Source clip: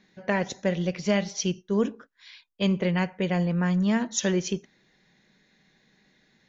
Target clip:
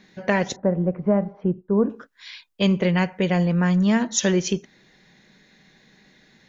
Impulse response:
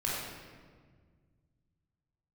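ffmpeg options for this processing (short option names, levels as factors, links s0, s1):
-filter_complex "[0:a]asettb=1/sr,asplit=3[s0][s1][s2];[s0]atrim=end=0.564[s3];[s1]atrim=start=0.56:end=1.9,asetpts=PTS-STARTPTS,afade=t=in:d=0.004:c=qsin,afade=t=out:st=1.336:d=0.004:c=qsin,lowpass=f=1200:w=0.5412,lowpass=f=1200:w=1.3066[s4];[s2]atrim=start=1.896[s5];[s3][s4]acrossfade=d=0.004:c1=hsin:c2=qsin[s6];[s6][s5]acrossfade=d=0.004:c1=qsin:c2=hsin,asplit=2[s7][s8];[s8]acompressor=threshold=0.02:ratio=6,volume=0.841[s9];[s7][s9]amix=inputs=2:normalize=0,volume=1.41"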